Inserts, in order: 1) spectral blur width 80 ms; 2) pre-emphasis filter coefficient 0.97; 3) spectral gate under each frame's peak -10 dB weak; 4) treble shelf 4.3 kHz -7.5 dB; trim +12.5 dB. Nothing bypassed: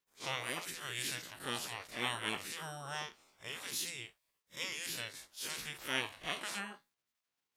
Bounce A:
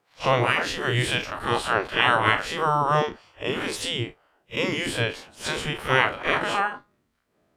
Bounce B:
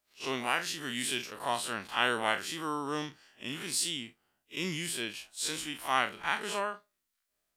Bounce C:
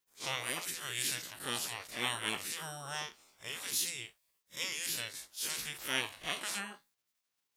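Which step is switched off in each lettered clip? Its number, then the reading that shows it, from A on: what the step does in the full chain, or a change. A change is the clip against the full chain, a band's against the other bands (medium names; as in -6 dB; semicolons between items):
2, 8 kHz band -15.5 dB; 3, 1 kHz band +5.0 dB; 4, 8 kHz band +5.5 dB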